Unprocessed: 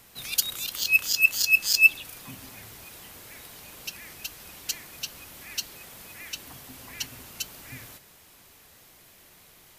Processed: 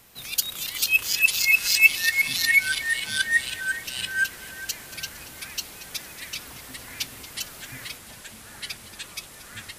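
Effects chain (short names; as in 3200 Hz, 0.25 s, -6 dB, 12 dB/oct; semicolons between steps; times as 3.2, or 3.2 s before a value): echoes that change speed 0.368 s, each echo -3 st, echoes 3; split-band echo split 2200 Hz, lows 0.411 s, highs 0.23 s, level -15 dB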